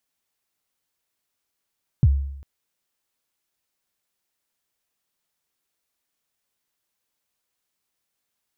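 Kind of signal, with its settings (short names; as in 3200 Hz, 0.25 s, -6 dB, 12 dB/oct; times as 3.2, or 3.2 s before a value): kick drum length 0.40 s, from 160 Hz, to 69 Hz, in 43 ms, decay 0.79 s, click off, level -9.5 dB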